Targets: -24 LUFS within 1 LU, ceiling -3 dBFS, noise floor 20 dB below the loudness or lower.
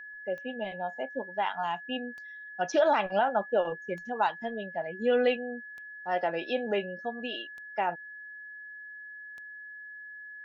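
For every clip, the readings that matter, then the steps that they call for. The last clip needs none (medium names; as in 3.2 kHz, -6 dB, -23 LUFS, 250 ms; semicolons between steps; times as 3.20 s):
clicks found 6; steady tone 1.7 kHz; tone level -42 dBFS; loudness -31.0 LUFS; peak level -14.5 dBFS; loudness target -24.0 LUFS
-> de-click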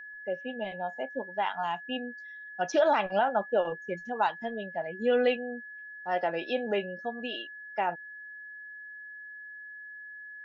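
clicks found 0; steady tone 1.7 kHz; tone level -42 dBFS
-> band-stop 1.7 kHz, Q 30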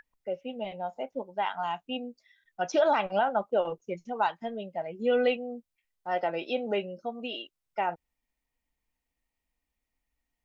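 steady tone not found; loudness -31.0 LUFS; peak level -14.5 dBFS; loudness target -24.0 LUFS
-> trim +7 dB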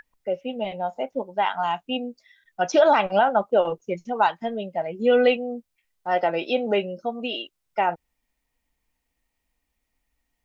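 loudness -24.0 LUFS; peak level -7.5 dBFS; noise floor -79 dBFS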